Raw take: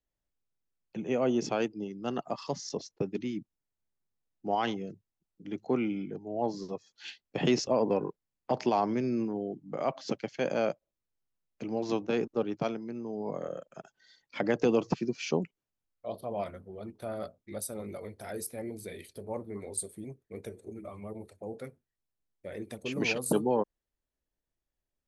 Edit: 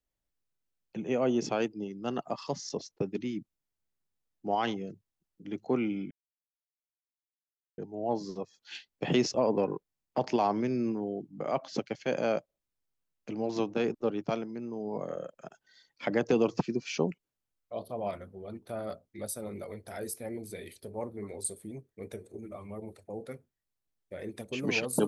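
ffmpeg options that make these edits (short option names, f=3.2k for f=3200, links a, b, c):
-filter_complex "[0:a]asplit=2[a][b];[a]atrim=end=6.11,asetpts=PTS-STARTPTS,afade=t=out:st=6.106:d=0.004:c=hsin,apad=pad_dur=1.67[c];[b]atrim=start=6.11,asetpts=PTS-STARTPTS,afade=t=in:d=0.004:c=hsin[d];[c][d]concat=n=2:v=0:a=1"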